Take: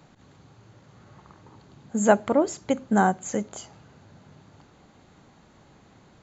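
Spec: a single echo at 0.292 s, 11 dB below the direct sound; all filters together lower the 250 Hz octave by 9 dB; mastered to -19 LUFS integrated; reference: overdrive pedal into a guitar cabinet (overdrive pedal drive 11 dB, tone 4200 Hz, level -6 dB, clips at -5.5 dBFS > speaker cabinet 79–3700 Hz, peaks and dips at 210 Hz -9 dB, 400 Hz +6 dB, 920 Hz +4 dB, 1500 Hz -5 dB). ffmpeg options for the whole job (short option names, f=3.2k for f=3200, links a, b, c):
-filter_complex "[0:a]equalizer=f=250:t=o:g=-7.5,aecho=1:1:292:0.282,asplit=2[a][b];[b]highpass=f=720:p=1,volume=11dB,asoftclip=type=tanh:threshold=-5.5dB[c];[a][c]amix=inputs=2:normalize=0,lowpass=f=4.2k:p=1,volume=-6dB,highpass=79,equalizer=f=210:t=q:w=4:g=-9,equalizer=f=400:t=q:w=4:g=6,equalizer=f=920:t=q:w=4:g=4,equalizer=f=1.5k:t=q:w=4:g=-5,lowpass=f=3.7k:w=0.5412,lowpass=f=3.7k:w=1.3066,volume=3.5dB"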